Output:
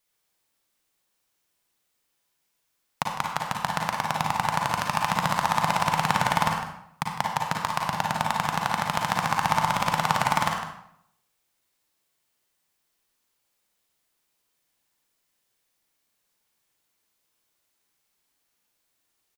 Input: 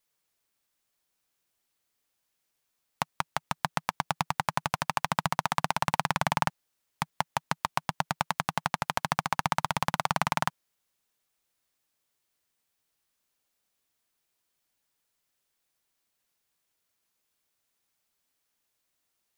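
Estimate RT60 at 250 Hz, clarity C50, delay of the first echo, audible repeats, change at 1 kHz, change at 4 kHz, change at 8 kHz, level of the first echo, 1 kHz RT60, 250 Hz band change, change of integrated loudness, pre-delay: 0.75 s, 1.0 dB, 55 ms, 2, +5.5 dB, +4.5 dB, +4.0 dB, -7.0 dB, 0.70 s, +5.0 dB, +5.0 dB, 36 ms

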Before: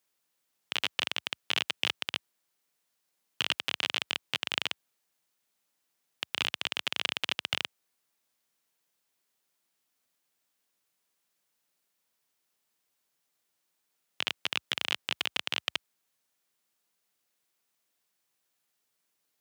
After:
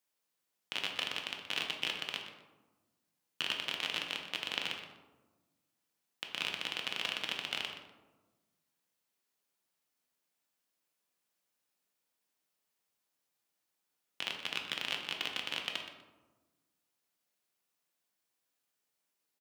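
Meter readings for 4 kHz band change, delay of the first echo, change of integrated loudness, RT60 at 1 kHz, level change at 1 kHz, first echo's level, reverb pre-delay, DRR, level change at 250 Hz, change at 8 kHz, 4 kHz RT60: -5.0 dB, 0.123 s, -5.0 dB, 1.2 s, -4.0 dB, -13.0 dB, 3 ms, 1.5 dB, -3.0 dB, -5.5 dB, 0.55 s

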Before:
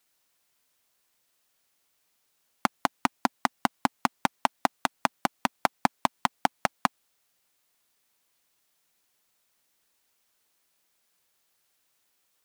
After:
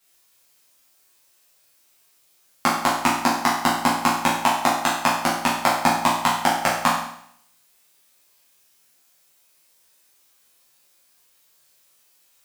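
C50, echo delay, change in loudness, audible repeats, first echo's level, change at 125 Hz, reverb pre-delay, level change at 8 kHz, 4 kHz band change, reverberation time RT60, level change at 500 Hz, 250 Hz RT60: 3.0 dB, none, +8.5 dB, none, none, +9.0 dB, 7 ms, +12.5 dB, +10.5 dB, 0.65 s, +9.0 dB, 0.65 s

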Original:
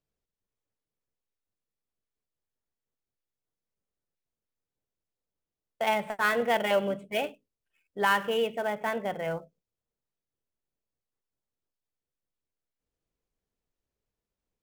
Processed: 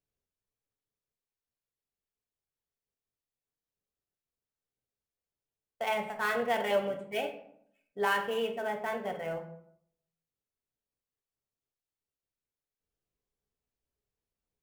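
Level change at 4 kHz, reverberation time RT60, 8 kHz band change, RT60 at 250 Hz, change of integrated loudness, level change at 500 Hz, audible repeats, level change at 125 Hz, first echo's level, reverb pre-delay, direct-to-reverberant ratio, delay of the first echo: -4.5 dB, 0.70 s, -4.5 dB, 0.85 s, -4.0 dB, -3.0 dB, none, -5.0 dB, none, 3 ms, 3.5 dB, none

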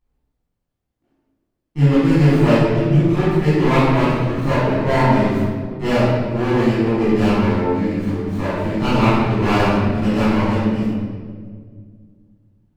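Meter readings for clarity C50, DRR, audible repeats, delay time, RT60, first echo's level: -4.0 dB, -14.0 dB, none, none, 1.9 s, none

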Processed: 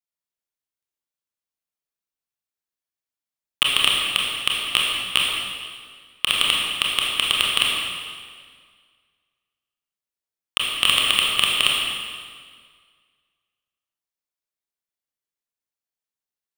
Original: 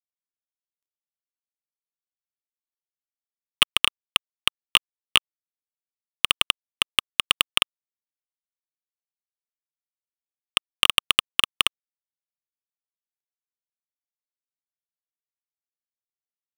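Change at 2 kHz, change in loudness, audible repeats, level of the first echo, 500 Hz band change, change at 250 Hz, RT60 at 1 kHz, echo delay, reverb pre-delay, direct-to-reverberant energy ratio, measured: +3.5 dB, +2.5 dB, none, none, +4.0 dB, +4.0 dB, 1.8 s, none, 24 ms, -3.5 dB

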